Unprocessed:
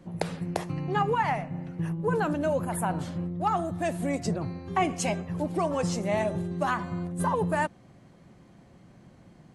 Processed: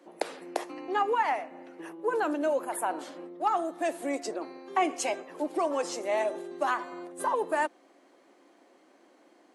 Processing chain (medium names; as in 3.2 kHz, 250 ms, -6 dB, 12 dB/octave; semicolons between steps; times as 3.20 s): elliptic high-pass 290 Hz, stop band 60 dB